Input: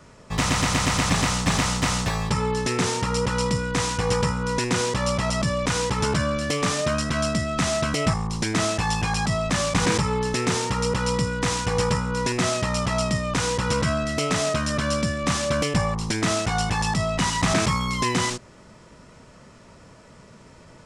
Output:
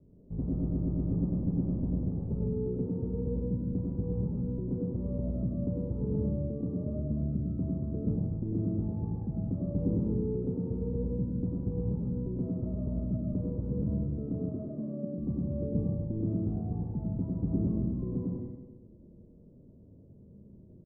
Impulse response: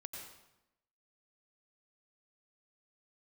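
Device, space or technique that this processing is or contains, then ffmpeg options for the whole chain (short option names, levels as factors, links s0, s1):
next room: -filter_complex "[0:a]asettb=1/sr,asplit=3[s0][s1][s2];[s0]atrim=end=14.394[s3];[s1]atrim=start=14.39:end=15.18,asetpts=PTS-STARTPTS,afade=t=in:d=0.004:c=qsin,afade=t=out:st=0.786:d=0.004:c=qsin,highpass=f=190:w=0.5412,highpass=f=190:w=1.3066[s4];[s2]atrim=start=15.176[s5];[s3][s4]acrossfade=d=0.004:c1=hsin:c2=qsin[s6];[s6][s5]acrossfade=d=0.004:c1=qsin:c2=hsin,lowpass=f=400:w=0.5412,lowpass=f=400:w=1.3066,aecho=1:1:102|204|306|408|510:0.562|0.214|0.0812|0.0309|0.0117[s7];[1:a]atrim=start_sample=2205[s8];[s7][s8]afir=irnorm=-1:irlink=0,volume=0.794"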